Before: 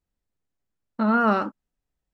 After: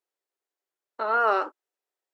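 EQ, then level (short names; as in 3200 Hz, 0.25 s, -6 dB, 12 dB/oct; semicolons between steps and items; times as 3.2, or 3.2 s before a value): elliptic high-pass 360 Hz, stop band 60 dB; 0.0 dB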